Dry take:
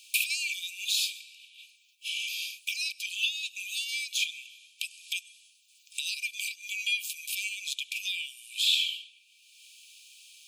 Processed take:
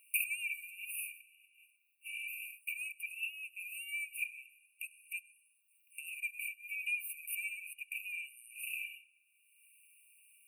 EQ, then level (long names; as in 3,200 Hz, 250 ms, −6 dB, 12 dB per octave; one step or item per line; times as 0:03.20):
linear-phase brick-wall band-stop 2,900–8,400 Hz
parametric band 3,900 Hz −12 dB 2.4 octaves
dynamic equaliser 2,200 Hz, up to +6 dB, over −57 dBFS, Q 3.1
0.0 dB